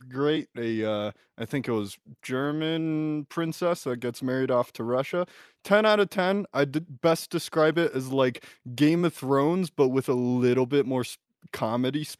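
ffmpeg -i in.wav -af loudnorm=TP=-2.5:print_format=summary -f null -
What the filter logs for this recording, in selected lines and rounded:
Input Integrated:    -26.1 LUFS
Input True Peak:      -6.9 dBTP
Input LRA:             4.5 LU
Input Threshold:     -36.5 LUFS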